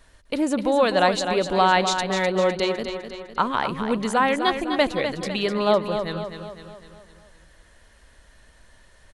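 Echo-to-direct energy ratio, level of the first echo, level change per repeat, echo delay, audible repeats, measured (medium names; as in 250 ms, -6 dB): -6.5 dB, -8.0 dB, -6.0 dB, 253 ms, 5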